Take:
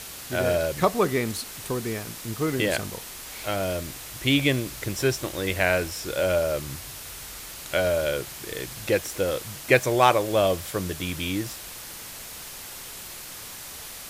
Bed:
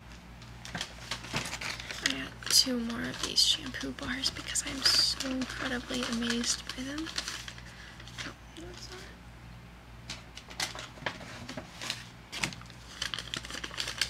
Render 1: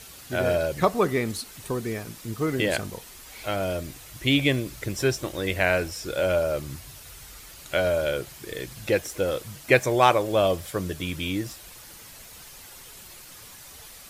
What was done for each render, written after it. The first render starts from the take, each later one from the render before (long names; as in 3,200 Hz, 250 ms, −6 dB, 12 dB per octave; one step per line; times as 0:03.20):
broadband denoise 8 dB, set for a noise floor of −40 dBFS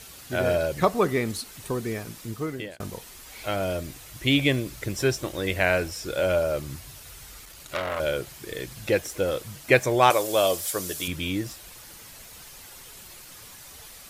0:02.22–0:02.80: fade out
0:07.45–0:08.00: saturating transformer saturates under 2,900 Hz
0:10.10–0:11.08: bass and treble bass −10 dB, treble +12 dB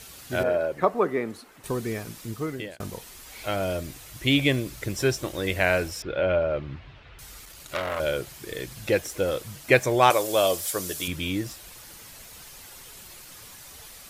0:00.43–0:01.64: three-way crossover with the lows and the highs turned down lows −14 dB, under 220 Hz, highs −15 dB, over 2,100 Hz
0:06.02–0:07.19: low-pass filter 3,100 Hz 24 dB per octave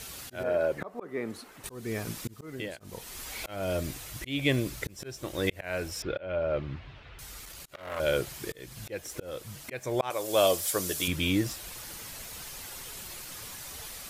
speech leveller within 5 dB 2 s
volume swells 415 ms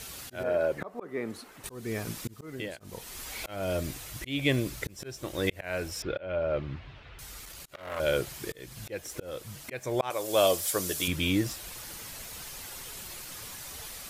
no processing that can be heard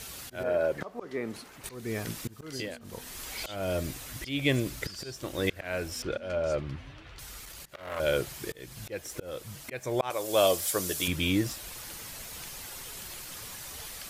mix in bed −19.5 dB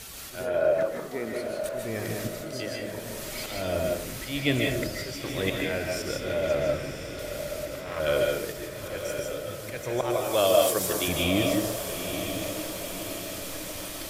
on a send: feedback delay with all-pass diffusion 945 ms, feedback 56%, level −8 dB
on the sum: comb and all-pass reverb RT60 0.53 s, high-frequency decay 0.55×, pre-delay 110 ms, DRR 0 dB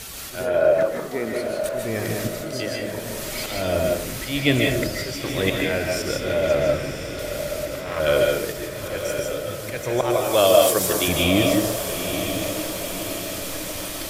level +6 dB
brickwall limiter −3 dBFS, peak gain reduction 1 dB